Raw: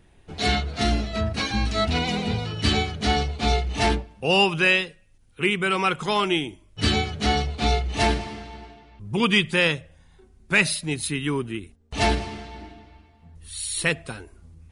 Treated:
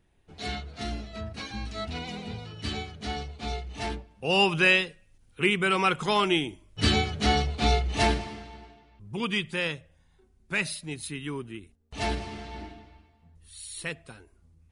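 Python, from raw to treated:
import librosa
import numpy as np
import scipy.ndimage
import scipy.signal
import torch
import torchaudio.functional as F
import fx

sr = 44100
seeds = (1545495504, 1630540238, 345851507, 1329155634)

y = fx.gain(x, sr, db=fx.line((3.93, -11.5), (4.51, -1.5), (7.91, -1.5), (9.1, -9.0), (12.02, -9.0), (12.59, 0.5), (13.52, -11.5)))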